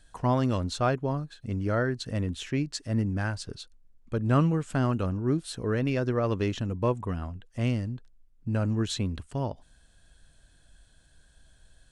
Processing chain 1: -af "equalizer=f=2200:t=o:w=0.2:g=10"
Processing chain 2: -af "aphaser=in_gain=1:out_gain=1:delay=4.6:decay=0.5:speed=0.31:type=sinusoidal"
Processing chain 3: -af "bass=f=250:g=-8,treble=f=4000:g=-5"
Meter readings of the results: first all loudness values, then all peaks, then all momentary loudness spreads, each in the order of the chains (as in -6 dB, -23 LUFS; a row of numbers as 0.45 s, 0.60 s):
-29.0 LUFS, -27.5 LUFS, -32.5 LUFS; -10.5 dBFS, -9.0 dBFS, -13.5 dBFS; 10 LU, 11 LU, 12 LU